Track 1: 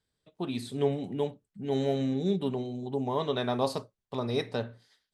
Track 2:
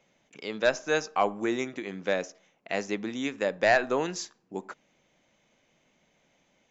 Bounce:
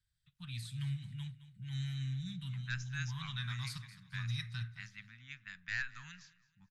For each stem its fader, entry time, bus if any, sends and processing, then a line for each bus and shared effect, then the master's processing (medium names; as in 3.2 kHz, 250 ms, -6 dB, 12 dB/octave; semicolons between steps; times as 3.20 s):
-4.5 dB, 0.00 s, no send, echo send -15 dB, none
-11.0 dB, 2.05 s, no send, echo send -20.5 dB, level-controlled noise filter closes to 480 Hz, open at -22.5 dBFS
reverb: none
echo: feedback delay 216 ms, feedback 33%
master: Chebyshev band-stop 140–1500 Hz, order 3; bass shelf 110 Hz +10.5 dB